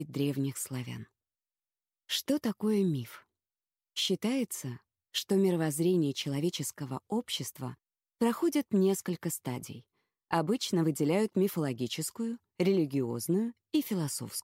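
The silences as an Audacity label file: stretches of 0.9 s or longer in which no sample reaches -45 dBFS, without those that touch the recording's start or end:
1.030000	2.090000	silence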